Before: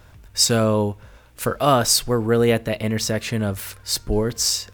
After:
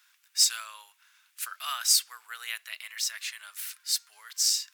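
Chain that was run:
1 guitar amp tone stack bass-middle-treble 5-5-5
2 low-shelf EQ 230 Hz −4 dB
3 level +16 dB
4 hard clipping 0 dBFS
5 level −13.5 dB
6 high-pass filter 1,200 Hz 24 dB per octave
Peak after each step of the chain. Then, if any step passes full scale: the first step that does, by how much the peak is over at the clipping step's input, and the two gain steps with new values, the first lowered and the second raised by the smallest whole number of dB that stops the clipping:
−11.0, −11.0, +5.0, 0.0, −13.5, −10.5 dBFS
step 3, 5.0 dB
step 3 +11 dB, step 5 −8.5 dB

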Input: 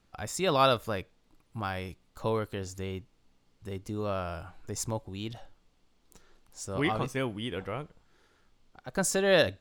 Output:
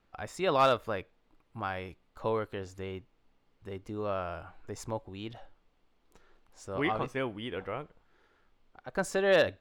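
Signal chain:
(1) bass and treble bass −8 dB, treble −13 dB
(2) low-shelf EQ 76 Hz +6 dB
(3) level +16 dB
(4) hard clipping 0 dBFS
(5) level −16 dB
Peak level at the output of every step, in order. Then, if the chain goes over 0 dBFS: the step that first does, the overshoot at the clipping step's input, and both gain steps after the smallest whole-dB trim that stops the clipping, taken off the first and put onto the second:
−12.0, −12.0, +4.0, 0.0, −16.0 dBFS
step 3, 4.0 dB
step 3 +12 dB, step 5 −12 dB

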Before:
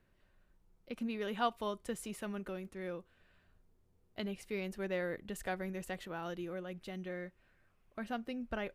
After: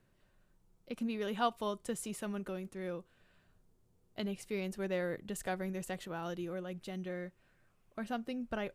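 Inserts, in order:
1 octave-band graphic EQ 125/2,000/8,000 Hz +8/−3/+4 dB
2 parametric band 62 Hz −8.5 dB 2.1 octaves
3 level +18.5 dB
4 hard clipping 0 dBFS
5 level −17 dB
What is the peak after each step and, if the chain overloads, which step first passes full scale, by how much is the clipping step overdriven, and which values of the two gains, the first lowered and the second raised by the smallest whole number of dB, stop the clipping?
−20.5, −20.0, −1.5, −1.5, −18.5 dBFS
no step passes full scale

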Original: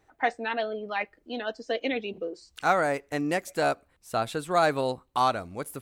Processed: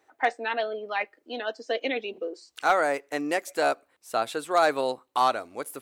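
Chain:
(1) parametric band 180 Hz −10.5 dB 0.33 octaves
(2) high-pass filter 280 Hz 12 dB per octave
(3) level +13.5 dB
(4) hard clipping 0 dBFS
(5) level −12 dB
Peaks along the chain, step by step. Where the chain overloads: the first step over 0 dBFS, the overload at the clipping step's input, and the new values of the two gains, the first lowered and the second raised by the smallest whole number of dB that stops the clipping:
−9.5, −9.5, +4.0, 0.0, −12.0 dBFS
step 3, 4.0 dB
step 3 +9.5 dB, step 5 −8 dB

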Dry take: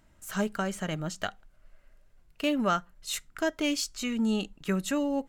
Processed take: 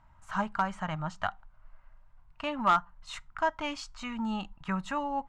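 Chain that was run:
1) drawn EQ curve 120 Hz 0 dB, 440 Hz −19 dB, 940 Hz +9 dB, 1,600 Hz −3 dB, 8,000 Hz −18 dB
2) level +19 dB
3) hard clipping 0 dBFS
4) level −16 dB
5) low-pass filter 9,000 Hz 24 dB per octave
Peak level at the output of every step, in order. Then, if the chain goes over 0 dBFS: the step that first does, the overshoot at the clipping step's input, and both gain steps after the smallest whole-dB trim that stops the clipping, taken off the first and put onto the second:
−13.0, +6.0, 0.0, −16.0, −15.5 dBFS
step 2, 6.0 dB
step 2 +13 dB, step 4 −10 dB

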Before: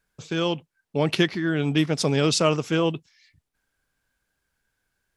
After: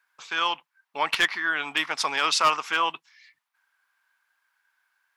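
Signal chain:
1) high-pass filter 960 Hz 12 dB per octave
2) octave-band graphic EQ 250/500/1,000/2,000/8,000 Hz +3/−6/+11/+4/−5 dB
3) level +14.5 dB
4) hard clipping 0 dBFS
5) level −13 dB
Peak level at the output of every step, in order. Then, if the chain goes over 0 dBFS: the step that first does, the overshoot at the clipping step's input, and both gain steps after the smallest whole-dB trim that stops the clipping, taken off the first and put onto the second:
−7.5, −4.5, +10.0, 0.0, −13.0 dBFS
step 3, 10.0 dB
step 3 +4.5 dB, step 5 −3 dB

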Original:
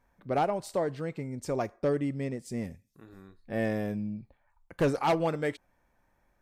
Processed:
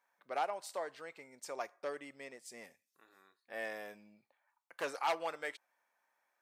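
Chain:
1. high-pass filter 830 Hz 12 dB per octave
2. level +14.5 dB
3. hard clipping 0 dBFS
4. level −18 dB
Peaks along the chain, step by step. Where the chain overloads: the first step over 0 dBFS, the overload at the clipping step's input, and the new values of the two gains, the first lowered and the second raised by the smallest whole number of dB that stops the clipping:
−17.0, −2.5, −2.5, −20.5 dBFS
no step passes full scale

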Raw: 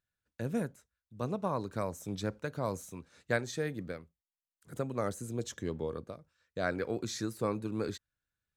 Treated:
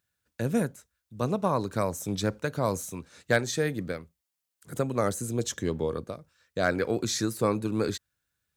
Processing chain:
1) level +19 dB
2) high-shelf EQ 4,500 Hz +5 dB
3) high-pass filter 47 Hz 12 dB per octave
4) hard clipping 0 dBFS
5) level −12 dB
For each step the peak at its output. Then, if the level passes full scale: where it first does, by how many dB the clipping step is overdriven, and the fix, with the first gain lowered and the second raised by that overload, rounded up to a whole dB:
+3.5, +4.5, +4.5, 0.0, −12.0 dBFS
step 1, 4.5 dB
step 1 +14 dB, step 5 −7 dB

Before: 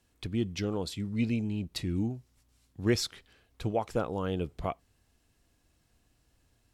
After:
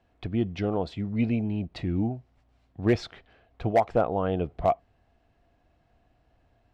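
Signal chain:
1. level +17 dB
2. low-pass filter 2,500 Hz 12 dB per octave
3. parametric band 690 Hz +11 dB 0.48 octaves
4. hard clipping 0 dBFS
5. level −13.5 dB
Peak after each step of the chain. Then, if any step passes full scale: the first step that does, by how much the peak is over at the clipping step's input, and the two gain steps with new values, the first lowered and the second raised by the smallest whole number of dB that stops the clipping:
+2.0, +2.0, +6.5, 0.0, −13.5 dBFS
step 1, 6.5 dB
step 1 +10 dB, step 5 −6.5 dB

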